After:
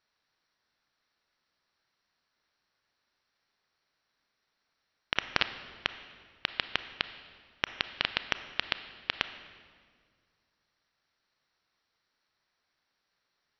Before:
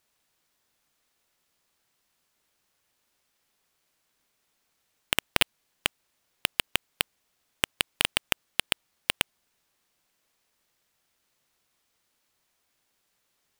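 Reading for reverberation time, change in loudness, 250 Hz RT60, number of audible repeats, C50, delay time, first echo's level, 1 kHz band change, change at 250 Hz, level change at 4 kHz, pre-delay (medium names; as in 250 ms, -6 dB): 1.8 s, -5.0 dB, 2.3 s, no echo, 11.5 dB, no echo, no echo, -2.0 dB, -5.5 dB, -5.0 dB, 28 ms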